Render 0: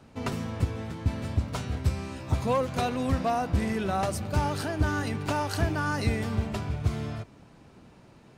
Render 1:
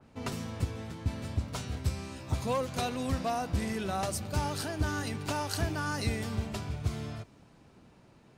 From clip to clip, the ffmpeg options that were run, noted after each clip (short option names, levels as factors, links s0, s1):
-af "adynamicequalizer=threshold=0.00398:dfrequency=3100:dqfactor=0.7:tfrequency=3100:tqfactor=0.7:attack=5:release=100:ratio=0.375:range=3.5:mode=boostabove:tftype=highshelf,volume=0.562"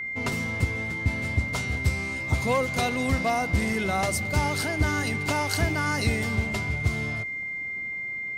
-af "aeval=exprs='val(0)+0.0158*sin(2*PI*2100*n/s)':c=same,volume=2"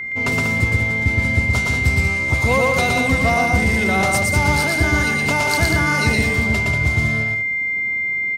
-af "aecho=1:1:116.6|189.5:0.794|0.447,volume=1.78"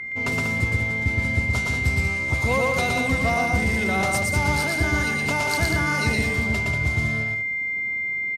-af "aresample=32000,aresample=44100,volume=0.562"